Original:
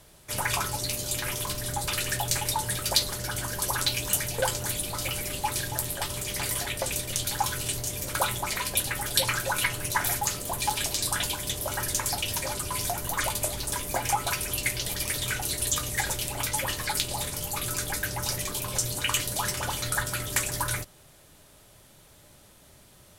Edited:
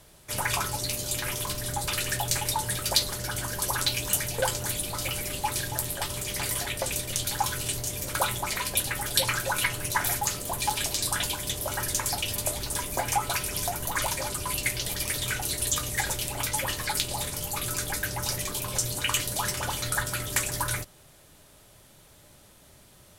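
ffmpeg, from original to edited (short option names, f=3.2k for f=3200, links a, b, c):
-filter_complex "[0:a]asplit=5[a][b][c][d][e];[a]atrim=end=12.362[f];[b]atrim=start=13.328:end=14.542[g];[c]atrim=start=12.788:end=13.332[h];[d]atrim=start=12.358:end=12.792[i];[e]atrim=start=14.538[j];[f][g]acrossfade=d=0.004:c1=hsin:c2=hsin[k];[k][h]acrossfade=d=0.004:c1=hsin:c2=hsin[l];[l][i]acrossfade=d=0.004:c1=hsin:c2=hsin[m];[m][j]acrossfade=d=0.004:c1=hsin:c2=hsin"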